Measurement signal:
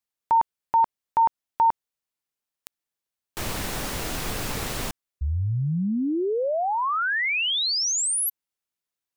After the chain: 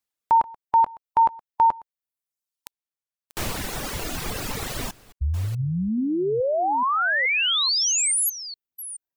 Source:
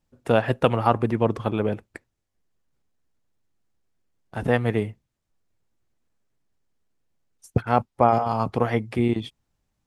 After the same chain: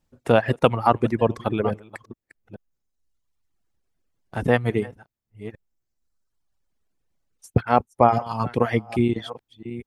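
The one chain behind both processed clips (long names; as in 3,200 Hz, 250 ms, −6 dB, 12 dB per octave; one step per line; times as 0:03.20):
delay that plays each chunk backwards 427 ms, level −13 dB
reverb reduction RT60 1.3 s
level +2.5 dB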